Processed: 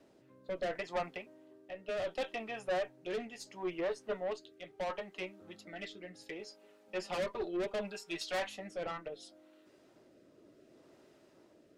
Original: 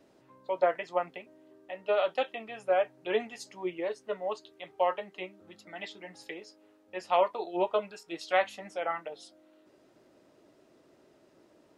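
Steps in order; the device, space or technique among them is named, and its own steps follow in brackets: 6.39–8.23 comb 5.1 ms, depth 87%; overdriven rotary cabinet (tube stage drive 31 dB, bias 0.25; rotary speaker horn 0.7 Hz); gain +2 dB

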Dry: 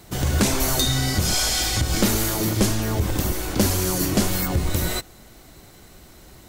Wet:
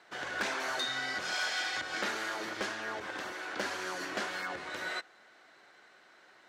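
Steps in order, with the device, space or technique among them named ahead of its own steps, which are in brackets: megaphone (BPF 570–3600 Hz; bell 1600 Hz +9 dB 0.57 oct; hard clip -18 dBFS, distortion -21 dB); gain -8 dB

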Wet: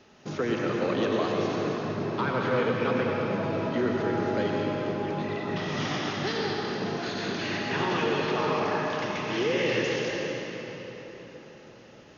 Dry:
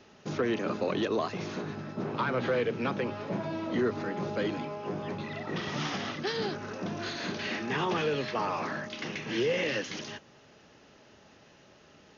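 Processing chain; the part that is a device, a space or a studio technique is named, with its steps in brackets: cathedral (reverb RT60 4.5 s, pre-delay 83 ms, DRR -1.5 dB)

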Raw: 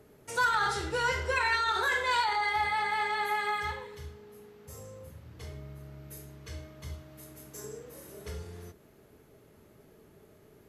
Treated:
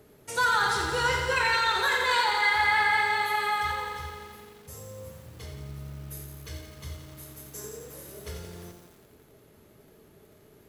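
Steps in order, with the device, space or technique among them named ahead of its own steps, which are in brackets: 2.42–3.01 bell 1800 Hz +8.5 dB 0.5 oct; presence and air boost (bell 3700 Hz +3 dB; high shelf 9800 Hz +6 dB); lo-fi delay 86 ms, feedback 80%, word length 9-bit, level -7 dB; gain +1.5 dB

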